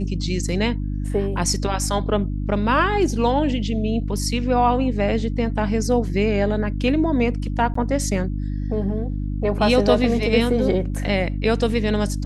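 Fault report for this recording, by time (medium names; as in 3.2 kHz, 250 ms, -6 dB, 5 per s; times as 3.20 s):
hum 50 Hz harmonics 6 -25 dBFS
7.74–7.75 s: dropout 14 ms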